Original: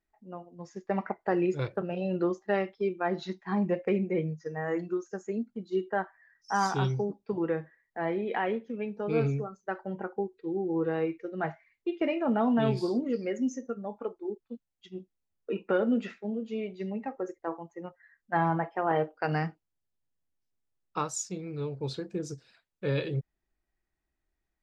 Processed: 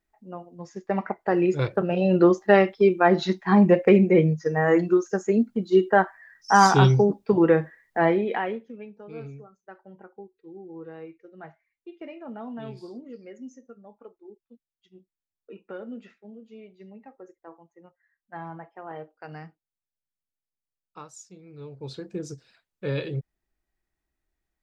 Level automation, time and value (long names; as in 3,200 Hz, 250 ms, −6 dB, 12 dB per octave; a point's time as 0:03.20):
0:01.23 +4 dB
0:02.28 +11.5 dB
0:08.03 +11.5 dB
0:08.48 +0.5 dB
0:09.07 −11.5 dB
0:21.36 −11.5 dB
0:22.12 +1 dB